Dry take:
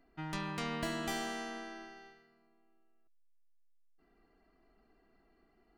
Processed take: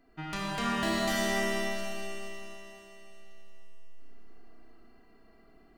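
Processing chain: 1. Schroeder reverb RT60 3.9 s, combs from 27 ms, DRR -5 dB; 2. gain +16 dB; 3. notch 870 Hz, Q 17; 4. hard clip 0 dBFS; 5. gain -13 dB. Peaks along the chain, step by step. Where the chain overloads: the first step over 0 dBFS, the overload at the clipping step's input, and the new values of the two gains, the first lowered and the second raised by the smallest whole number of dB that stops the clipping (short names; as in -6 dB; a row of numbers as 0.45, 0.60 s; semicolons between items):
-20.0, -4.0, -4.0, -4.0, -17.0 dBFS; no overload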